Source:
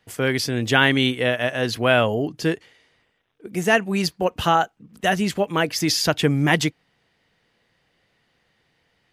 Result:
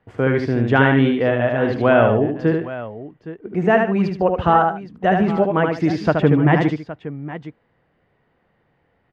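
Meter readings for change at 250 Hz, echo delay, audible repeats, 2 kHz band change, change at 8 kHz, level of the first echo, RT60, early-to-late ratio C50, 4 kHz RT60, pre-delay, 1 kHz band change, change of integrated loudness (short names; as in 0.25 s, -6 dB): +5.5 dB, 75 ms, 3, -0.5 dB, under -20 dB, -4.5 dB, none, none, none, none, +4.5 dB, +3.5 dB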